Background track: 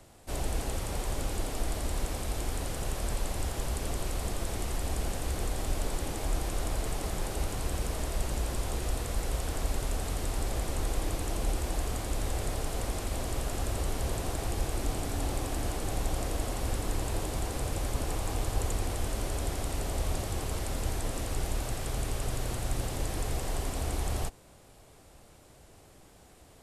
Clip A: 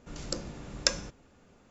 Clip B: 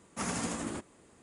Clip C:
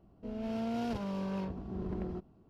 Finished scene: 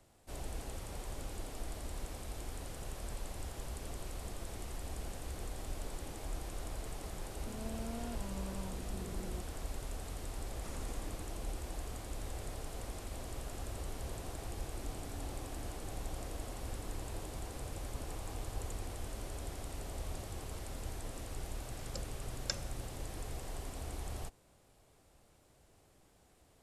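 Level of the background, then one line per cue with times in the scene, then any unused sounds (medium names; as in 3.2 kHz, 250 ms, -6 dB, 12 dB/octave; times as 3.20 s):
background track -10.5 dB
7.22 s: add C -6.5 dB + peak limiter -31.5 dBFS
10.45 s: add B -18 dB
21.63 s: add A -8 dB + Shepard-style flanger falling 1.5 Hz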